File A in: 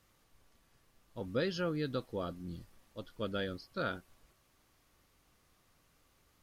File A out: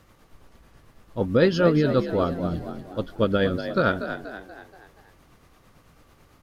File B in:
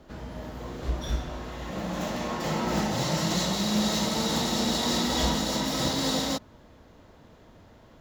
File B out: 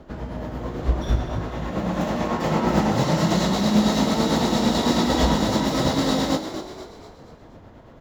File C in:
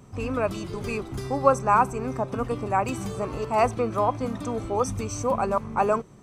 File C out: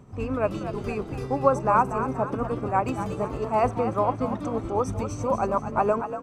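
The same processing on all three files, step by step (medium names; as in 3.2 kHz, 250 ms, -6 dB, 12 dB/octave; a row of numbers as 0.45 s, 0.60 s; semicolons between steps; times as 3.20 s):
treble shelf 2.5 kHz -10 dB; tremolo 9 Hz, depth 40%; frequency-shifting echo 239 ms, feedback 47%, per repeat +51 Hz, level -10 dB; peak normalisation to -6 dBFS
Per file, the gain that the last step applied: +17.5 dB, +9.0 dB, +2.0 dB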